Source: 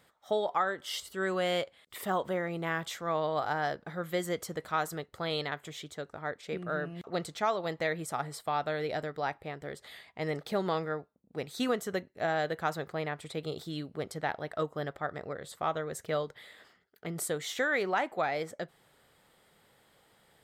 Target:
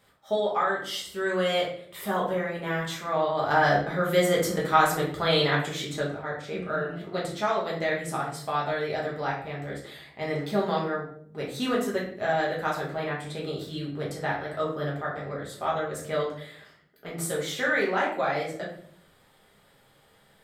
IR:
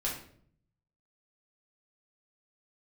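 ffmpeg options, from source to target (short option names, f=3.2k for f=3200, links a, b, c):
-filter_complex "[0:a]asettb=1/sr,asplit=3[a][b][c];[a]atrim=end=3.504[d];[b]atrim=start=3.5:end=6.13,asetpts=PTS-STARTPTS,afade=t=in:d=0.004:c=qsin,afade=t=out:st=2.626:d=0.004:c=qsin,acontrast=70[e];[c]atrim=start=6.126[f];[d][e]acrossfade=d=0.004:c1=hsin:c2=qsin[g];[g][f]acrossfade=d=0.004:c1=qsin:c2=hsin[h];[1:a]atrim=start_sample=2205[i];[h][i]afir=irnorm=-1:irlink=0"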